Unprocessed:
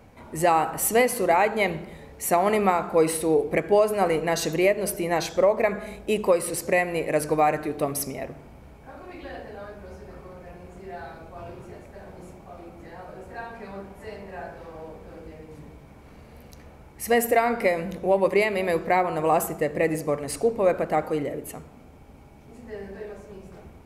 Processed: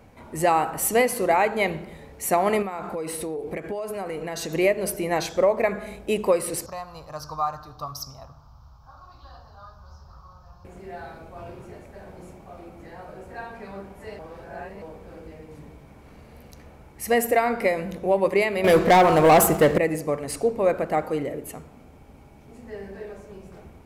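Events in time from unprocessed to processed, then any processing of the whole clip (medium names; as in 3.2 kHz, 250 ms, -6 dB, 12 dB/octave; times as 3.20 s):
2.62–4.54 s: compression 8:1, threshold -27 dBFS
6.66–10.65 s: FFT filter 120 Hz 0 dB, 180 Hz -13 dB, 390 Hz -25 dB, 1.2 kHz +5 dB, 2.1 kHz -28 dB, 3.6 kHz -5 dB, 5.4 kHz +5 dB, 9.3 kHz -24 dB, 14 kHz -5 dB
14.19–14.82 s: reverse
18.64–19.78 s: waveshaping leveller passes 3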